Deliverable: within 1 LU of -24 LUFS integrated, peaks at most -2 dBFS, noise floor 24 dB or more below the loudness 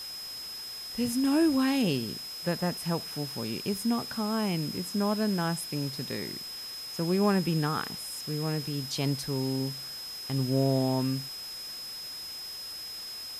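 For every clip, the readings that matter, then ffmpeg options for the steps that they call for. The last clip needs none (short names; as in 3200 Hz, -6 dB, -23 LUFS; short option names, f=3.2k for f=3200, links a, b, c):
steady tone 5100 Hz; tone level -38 dBFS; noise floor -40 dBFS; noise floor target -55 dBFS; loudness -30.5 LUFS; peak -12.5 dBFS; loudness target -24.0 LUFS
-> -af "bandreject=f=5.1k:w=30"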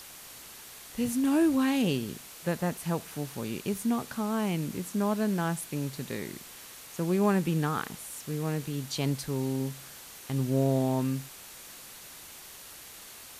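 steady tone none; noise floor -48 dBFS; noise floor target -54 dBFS
-> -af "afftdn=nr=6:nf=-48"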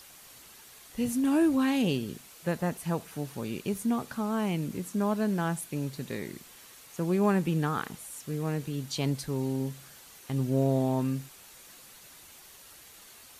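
noise floor -52 dBFS; noise floor target -55 dBFS
-> -af "afftdn=nr=6:nf=-52"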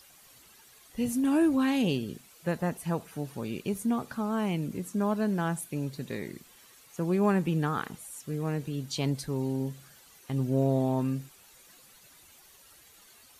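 noise floor -57 dBFS; loudness -30.5 LUFS; peak -12.5 dBFS; loudness target -24.0 LUFS
-> -af "volume=6.5dB"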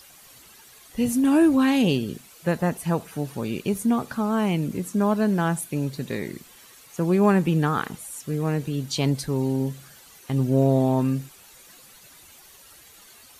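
loudness -24.0 LUFS; peak -6.0 dBFS; noise floor -50 dBFS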